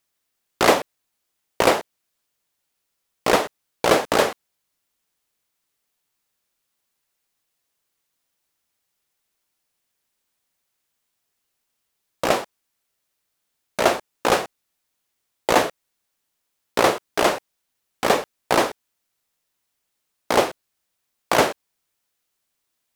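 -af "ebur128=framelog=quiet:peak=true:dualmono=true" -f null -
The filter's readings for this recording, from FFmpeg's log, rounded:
Integrated loudness:
  I:         -18.6 LUFS
  Threshold: -29.1 LUFS
Loudness range:
  LRA:         8.3 LU
  Threshold: -42.5 LUFS
  LRA low:   -28.9 LUFS
  LRA high:  -20.6 LUFS
True peak:
  Peak:       -2.0 dBFS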